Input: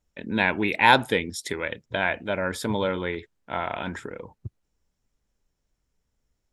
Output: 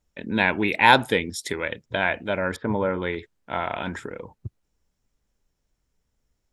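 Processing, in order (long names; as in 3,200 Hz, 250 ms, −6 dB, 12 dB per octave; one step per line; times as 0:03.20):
0:02.56–0:03.02: low-pass filter 2,000 Hz 24 dB per octave
level +1.5 dB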